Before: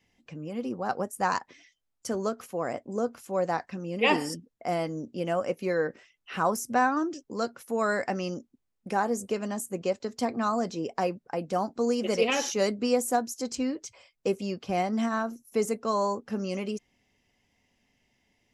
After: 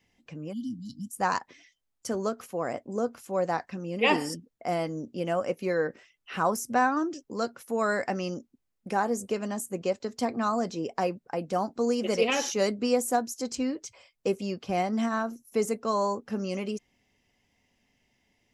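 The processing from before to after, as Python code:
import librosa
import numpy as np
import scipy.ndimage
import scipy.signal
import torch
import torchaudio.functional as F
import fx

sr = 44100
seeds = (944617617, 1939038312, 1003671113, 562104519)

y = fx.spec_erase(x, sr, start_s=0.53, length_s=0.62, low_hz=310.0, high_hz=2900.0)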